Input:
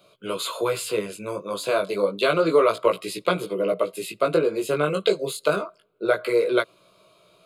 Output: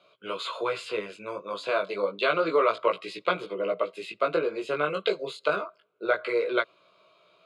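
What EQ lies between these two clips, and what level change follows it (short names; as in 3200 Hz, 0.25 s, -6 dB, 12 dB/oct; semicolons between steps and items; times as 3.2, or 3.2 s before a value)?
band-pass 2400 Hz, Q 0.58; air absorption 58 m; tilt -2 dB/oct; +2.0 dB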